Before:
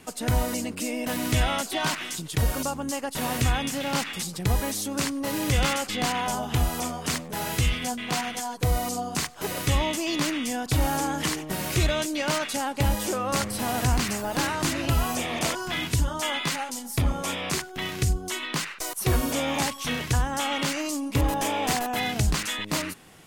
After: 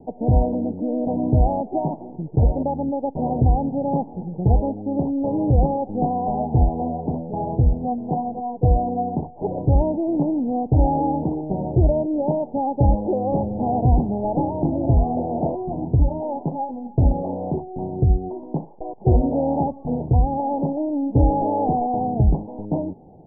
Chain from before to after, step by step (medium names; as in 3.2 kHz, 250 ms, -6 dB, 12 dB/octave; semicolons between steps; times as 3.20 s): steep low-pass 870 Hz 96 dB/octave; trim +7.5 dB